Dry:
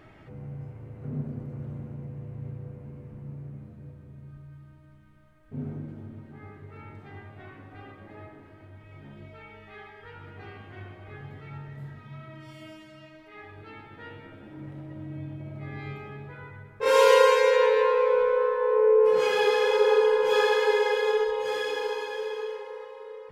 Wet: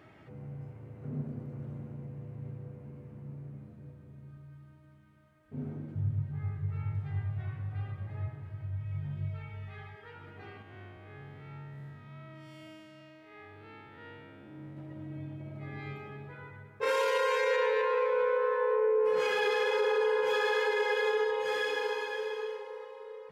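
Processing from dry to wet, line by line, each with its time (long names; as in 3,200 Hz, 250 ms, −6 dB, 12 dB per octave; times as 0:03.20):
0:05.95–0:09.95: low shelf with overshoot 180 Hz +13 dB, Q 3
0:10.62–0:14.77: spectrum smeared in time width 139 ms
whole clip: high-pass filter 84 Hz; dynamic equaliser 1,800 Hz, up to +5 dB, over −43 dBFS, Q 1.2; brickwall limiter −17 dBFS; level −3.5 dB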